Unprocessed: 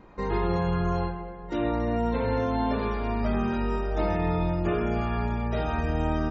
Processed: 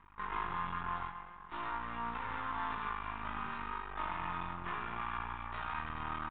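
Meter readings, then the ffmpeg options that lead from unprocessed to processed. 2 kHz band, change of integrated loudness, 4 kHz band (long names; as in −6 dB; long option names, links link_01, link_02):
−4.5 dB, −12.0 dB, −7.5 dB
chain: -af "aeval=exprs='val(0)+0.00562*(sin(2*PI*50*n/s)+sin(2*PI*2*50*n/s)/2+sin(2*PI*3*50*n/s)/3+sin(2*PI*4*50*n/s)/4+sin(2*PI*5*50*n/s)/5)':channel_layout=same,aeval=exprs='max(val(0),0)':channel_layout=same,aresample=8000,aresample=44100,lowshelf=frequency=770:width_type=q:width=3:gain=-11,volume=-5dB"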